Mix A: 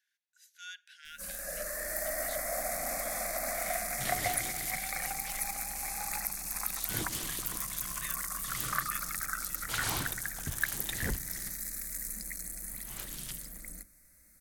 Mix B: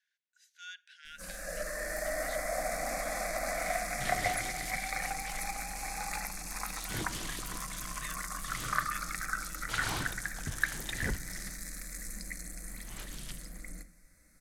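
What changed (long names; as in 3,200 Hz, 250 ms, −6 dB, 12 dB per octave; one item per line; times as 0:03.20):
first sound: send on
master: add high-frequency loss of the air 54 metres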